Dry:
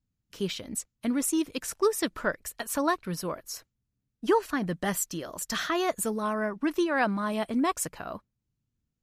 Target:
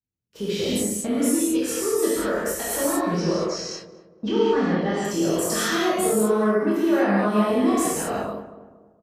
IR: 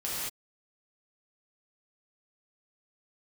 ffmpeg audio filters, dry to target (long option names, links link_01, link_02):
-filter_complex "[0:a]highpass=40,equalizer=frequency=430:width_type=o:width=1.3:gain=9,agate=range=-16dB:threshold=-46dB:ratio=16:detection=peak,dynaudnorm=framelen=180:gausssize=7:maxgain=11.5dB,alimiter=limit=-21dB:level=0:latency=1:release=269,asplit=2[link_01][link_02];[link_02]adelay=24,volume=-4dB[link_03];[link_01][link_03]amix=inputs=2:normalize=0,asettb=1/sr,asplit=3[link_04][link_05][link_06];[link_04]atrim=end=2.884[link_07];[link_05]atrim=start=2.88:end=5.05,asetpts=PTS-STARTPTS,afade=type=in:duration=0.004:curve=qsin,afade=type=out:start_time=2.166:duration=0.004:curve=qsin,lowpass=frequency=5400:width=0.5412,lowpass=frequency=5400:width=1.3066[link_08];[link_06]atrim=start=5.046[link_09];[link_07][link_08]acrossfade=duration=0.004:curve1=hsin:curve2=qsin[link_10];[link_10][link_09]acrossfade=duration=0.004:curve1=qsin:curve2=hsin,asplit=2[link_11][link_12];[link_12]adelay=233,lowpass=frequency=1100:poles=1,volume=-12.5dB,asplit=2[link_13][link_14];[link_14]adelay=233,lowpass=frequency=1100:poles=1,volume=0.43,asplit=2[link_15][link_16];[link_16]adelay=233,lowpass=frequency=1100:poles=1,volume=0.43,asplit=2[link_17][link_18];[link_18]adelay=233,lowpass=frequency=1100:poles=1,volume=0.43[link_19];[link_11][link_13][link_15][link_17][link_19]amix=inputs=5:normalize=0[link_20];[1:a]atrim=start_sample=2205[link_21];[link_20][link_21]afir=irnorm=-1:irlink=0"